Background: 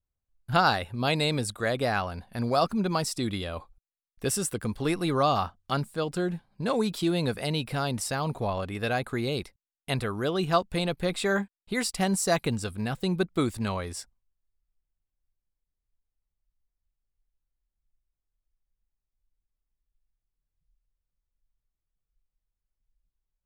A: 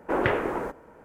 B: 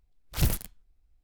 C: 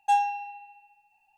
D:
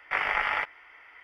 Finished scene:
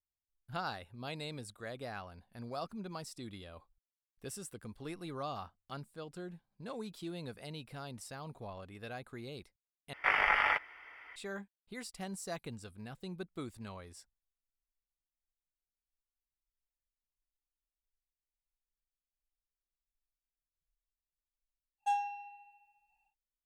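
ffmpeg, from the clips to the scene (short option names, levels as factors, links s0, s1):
-filter_complex "[0:a]volume=0.15,asplit=2[s0][s1];[s0]atrim=end=9.934[s2];[4:a]atrim=end=1.23,asetpts=PTS-STARTPTS,volume=0.841[s3];[s1]atrim=start=11.156[s4];[3:a]atrim=end=1.37,asetpts=PTS-STARTPTS,volume=0.316,afade=t=in:d=0.1,afade=t=out:st=1.27:d=0.1,adelay=21780[s5];[s2][s3]acrossfade=d=0.004:c1=hsin:c2=hsin[s6];[s6][s4]acrossfade=d=0.004:c1=hsin:c2=hsin[s7];[s7][s5]amix=inputs=2:normalize=0"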